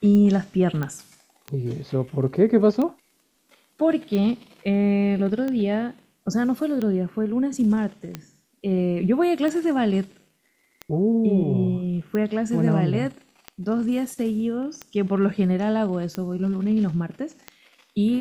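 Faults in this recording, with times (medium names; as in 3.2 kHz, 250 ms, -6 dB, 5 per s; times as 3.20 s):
tick 45 rpm -16 dBFS
0.83 s: pop -16 dBFS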